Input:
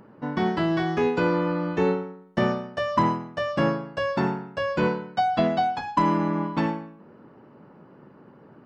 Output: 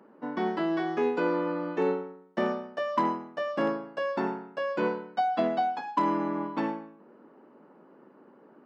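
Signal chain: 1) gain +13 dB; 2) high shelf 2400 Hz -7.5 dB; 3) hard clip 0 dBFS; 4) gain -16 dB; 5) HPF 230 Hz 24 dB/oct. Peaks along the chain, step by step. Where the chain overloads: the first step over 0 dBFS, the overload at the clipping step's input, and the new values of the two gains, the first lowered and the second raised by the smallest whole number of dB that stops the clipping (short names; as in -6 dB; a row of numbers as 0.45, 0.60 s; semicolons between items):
+4.5, +3.0, 0.0, -16.0, -14.0 dBFS; step 1, 3.0 dB; step 1 +10 dB, step 4 -13 dB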